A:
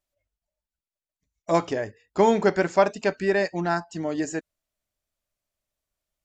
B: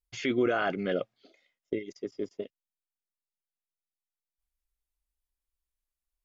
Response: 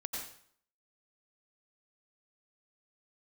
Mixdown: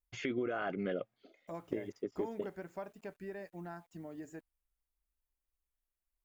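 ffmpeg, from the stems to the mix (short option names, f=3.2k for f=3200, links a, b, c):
-filter_complex "[0:a]acompressor=threshold=-34dB:ratio=2,lowshelf=f=170:g=6.5,acrusher=bits=8:mix=0:aa=0.000001,volume=-14.5dB[a];[1:a]acompressor=threshold=-31dB:ratio=6,volume=-1dB[b];[a][b]amix=inputs=2:normalize=0,equalizer=f=5k:w=0.85:g=-9.5"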